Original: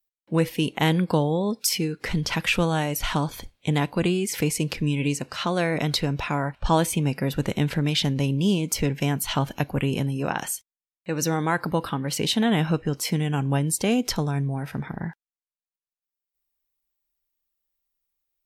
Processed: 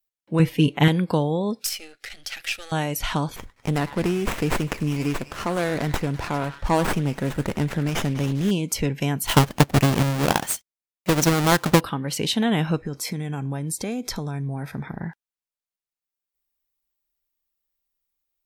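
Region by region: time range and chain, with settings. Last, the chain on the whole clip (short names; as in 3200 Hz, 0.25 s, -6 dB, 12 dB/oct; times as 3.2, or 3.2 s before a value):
0.39–0.88 tone controls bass +4 dB, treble -6 dB + comb 6.9 ms, depth 82%
1.65–2.72 half-wave gain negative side -12 dB + resonant low shelf 640 Hz -13 dB, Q 1.5 + fixed phaser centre 410 Hz, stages 4
3.36–8.51 bell 9200 Hz +12.5 dB 0.56 oct + delay with a stepping band-pass 0.1 s, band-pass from 1400 Hz, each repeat 0.7 oct, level -7.5 dB + running maximum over 9 samples
9.26–11.81 half-waves squared off + transient shaper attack +5 dB, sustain -5 dB
12.76–15.07 Butterworth band-stop 2900 Hz, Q 6.4 + compressor 5:1, threshold -24 dBFS
whole clip: dry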